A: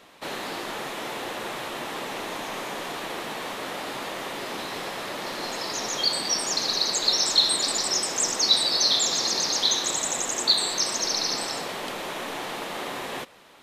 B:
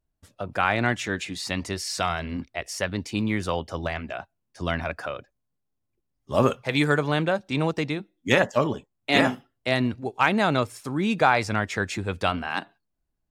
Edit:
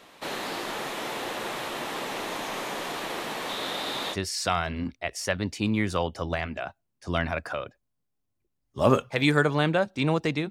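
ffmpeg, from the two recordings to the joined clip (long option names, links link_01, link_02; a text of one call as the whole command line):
ffmpeg -i cue0.wav -i cue1.wav -filter_complex "[0:a]asettb=1/sr,asplit=3[link_01][link_02][link_03];[link_01]atrim=end=3.494[link_04];[link_02]atrim=start=3.49:end=4.17,asetpts=PTS-STARTPTS,afade=type=in:duration=0.004:curve=qsin,afade=type=out:start_time=0.676:duration=0.004:curve=qsin,equalizer=frequency=3700:width=4.9:gain=11[link_05];[link_03]atrim=start=4.166[link_06];[link_04][link_05]acrossfade=duration=0.004:curve1=hsin:curve2=qsin[link_07];[link_07][link_06]acrossfade=duration=0.004:curve1=qsin:curve2=hsin,apad=whole_dur=10.5,atrim=end=10.5,atrim=end=4.17,asetpts=PTS-STARTPTS[link_08];[1:a]atrim=start=1.64:end=8.03,asetpts=PTS-STARTPTS[link_09];[link_08][link_09]acrossfade=duration=0.06:curve1=tri:curve2=tri" out.wav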